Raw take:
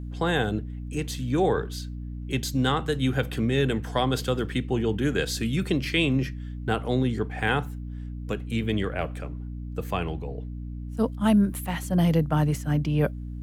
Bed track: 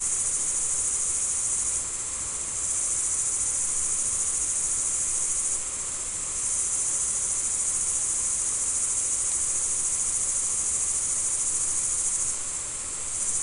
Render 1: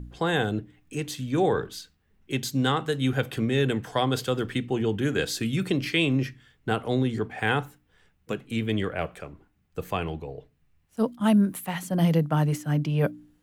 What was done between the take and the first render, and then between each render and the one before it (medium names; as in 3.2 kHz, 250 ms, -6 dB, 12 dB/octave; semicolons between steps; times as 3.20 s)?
de-hum 60 Hz, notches 5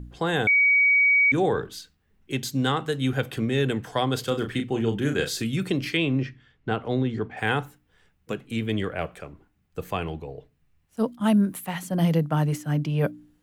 0.47–1.32 s: bleep 2.26 kHz -15.5 dBFS; 4.20–5.44 s: doubling 35 ms -7 dB; 5.97–7.37 s: distance through air 130 m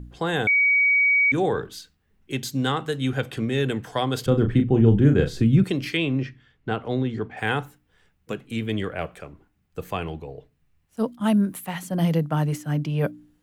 2.99–3.47 s: low-pass 11 kHz; 4.26–5.64 s: tilt EQ -4 dB/octave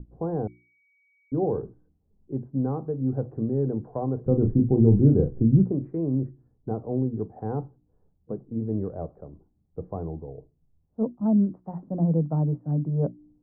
Bessel low-pass 530 Hz, order 6; hum notches 60/120/180/240/300/360 Hz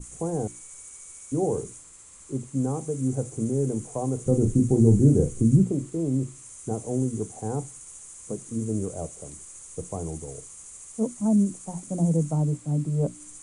add bed track -18 dB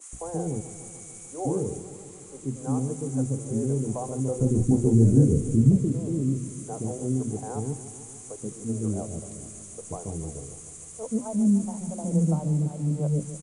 bands offset in time highs, lows 130 ms, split 450 Hz; modulated delay 148 ms, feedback 72%, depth 101 cents, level -14 dB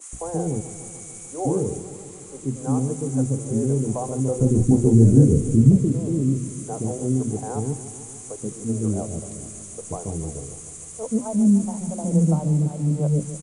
trim +4.5 dB